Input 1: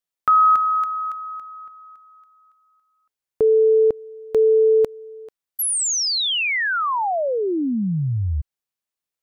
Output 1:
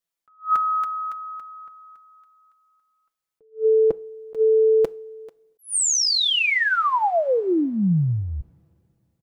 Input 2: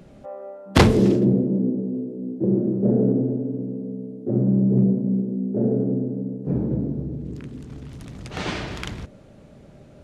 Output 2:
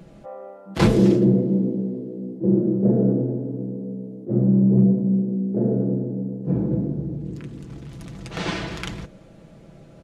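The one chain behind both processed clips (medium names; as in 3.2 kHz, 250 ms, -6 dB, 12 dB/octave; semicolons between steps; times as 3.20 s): comb 6 ms, depth 51%; two-slope reverb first 0.4 s, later 3 s, from -21 dB, DRR 19 dB; attacks held to a fixed rise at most 270 dB/s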